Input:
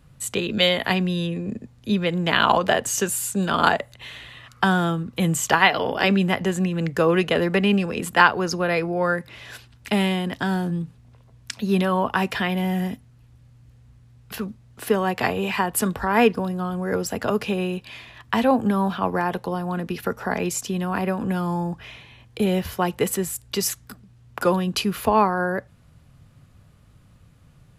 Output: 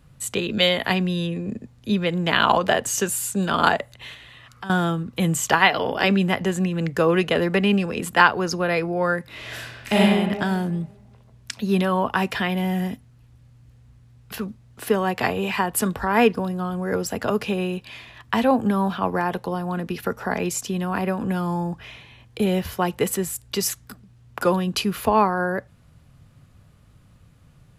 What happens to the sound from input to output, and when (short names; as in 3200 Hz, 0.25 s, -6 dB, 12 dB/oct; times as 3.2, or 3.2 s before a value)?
4.14–4.7 compressor 2:1, threshold -44 dBFS
9.26–9.98 reverb throw, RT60 1.5 s, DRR -6 dB